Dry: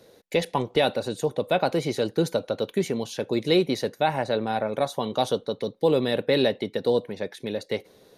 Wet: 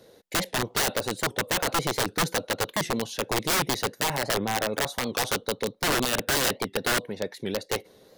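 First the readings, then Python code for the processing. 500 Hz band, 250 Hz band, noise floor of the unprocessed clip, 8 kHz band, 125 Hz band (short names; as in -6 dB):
-6.5 dB, -5.0 dB, -56 dBFS, +13.5 dB, -2.5 dB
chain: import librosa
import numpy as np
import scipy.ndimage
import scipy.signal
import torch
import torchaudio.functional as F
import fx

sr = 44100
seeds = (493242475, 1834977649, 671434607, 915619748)

y = (np.mod(10.0 ** (18.5 / 20.0) * x + 1.0, 2.0) - 1.0) / 10.0 ** (18.5 / 20.0)
y = fx.notch(y, sr, hz=2400.0, q=18.0)
y = fx.record_warp(y, sr, rpm=78.0, depth_cents=160.0)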